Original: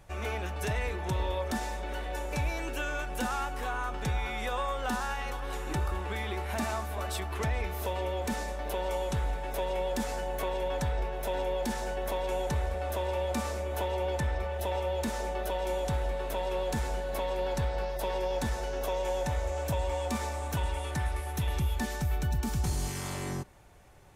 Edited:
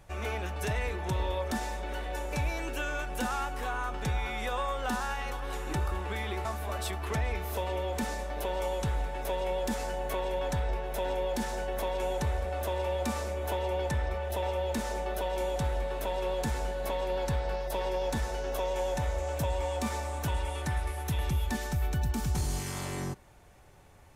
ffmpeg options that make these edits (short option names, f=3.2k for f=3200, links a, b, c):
-filter_complex "[0:a]asplit=2[a][b];[a]atrim=end=6.452[c];[b]atrim=start=6.738[d];[c][d]acrossfade=d=0.004:c1=hsin:c2=hsin"